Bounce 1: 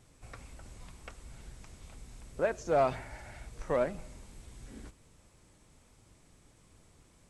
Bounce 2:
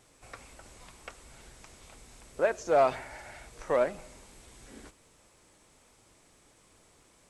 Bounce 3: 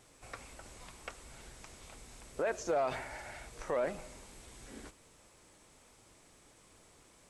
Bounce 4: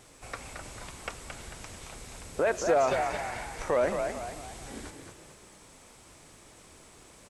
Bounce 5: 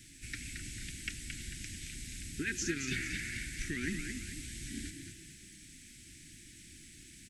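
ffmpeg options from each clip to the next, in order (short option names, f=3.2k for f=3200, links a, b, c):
-af "bass=f=250:g=-11,treble=f=4k:g=0,volume=4dB"
-af "alimiter=limit=-24dB:level=0:latency=1:release=31"
-filter_complex "[0:a]asplit=6[a][b][c][d][e][f];[b]adelay=222,afreqshift=50,volume=-6dB[g];[c]adelay=444,afreqshift=100,volume=-13.7dB[h];[d]adelay=666,afreqshift=150,volume=-21.5dB[i];[e]adelay=888,afreqshift=200,volume=-29.2dB[j];[f]adelay=1110,afreqshift=250,volume=-37dB[k];[a][g][h][i][j][k]amix=inputs=6:normalize=0,volume=7dB"
-af "asuperstop=centerf=750:order=12:qfactor=0.55,volume=1.5dB"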